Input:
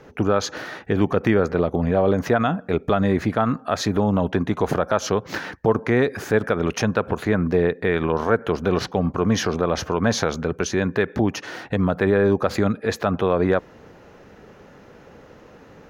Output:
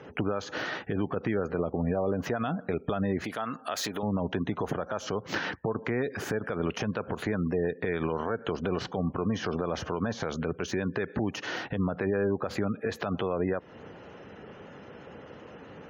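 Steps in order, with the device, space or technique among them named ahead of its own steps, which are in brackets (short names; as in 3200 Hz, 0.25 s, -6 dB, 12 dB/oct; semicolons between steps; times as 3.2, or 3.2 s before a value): broadcast voice chain (HPF 76 Hz 12 dB/oct; de-esser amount 75%; compressor 4:1, threshold -25 dBFS, peak gain reduction 11 dB; bell 3000 Hz +5 dB 0.24 oct; limiter -18.5 dBFS, peak gain reduction 7.5 dB); 3.24–4.03 RIAA curve recording; spectral gate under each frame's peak -30 dB strong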